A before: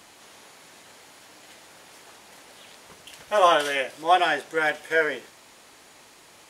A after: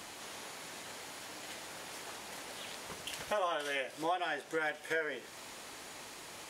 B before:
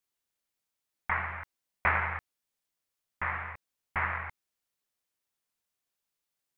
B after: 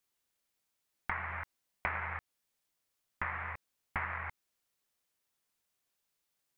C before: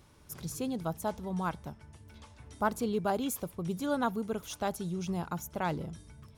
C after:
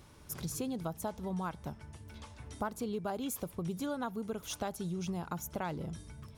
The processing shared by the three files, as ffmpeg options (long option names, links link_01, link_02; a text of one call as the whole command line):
ffmpeg -i in.wav -af "acompressor=threshold=-37dB:ratio=5,volume=3dB" out.wav